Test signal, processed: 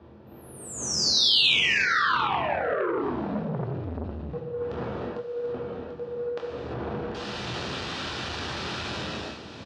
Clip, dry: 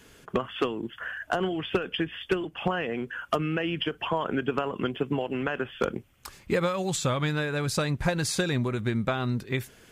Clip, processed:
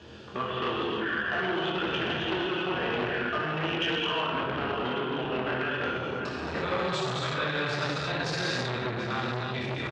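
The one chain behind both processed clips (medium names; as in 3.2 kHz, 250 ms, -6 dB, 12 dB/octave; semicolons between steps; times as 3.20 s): wind noise 380 Hz -38 dBFS; on a send: delay 740 ms -12 dB; on the sum: dynamic bell 1.4 kHz, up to +5 dB, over -44 dBFS, Q 1; low-pass 4.4 kHz 24 dB/octave; band-stop 2.1 kHz, Q 8.1; reverse; compression 6:1, threshold -29 dBFS; reverse; high-pass 71 Hz 24 dB/octave; treble shelf 3 kHz +10.5 dB; doubling 24 ms -8.5 dB; gated-style reverb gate 370 ms flat, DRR -6 dB; transformer saturation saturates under 1.4 kHz; trim -2.5 dB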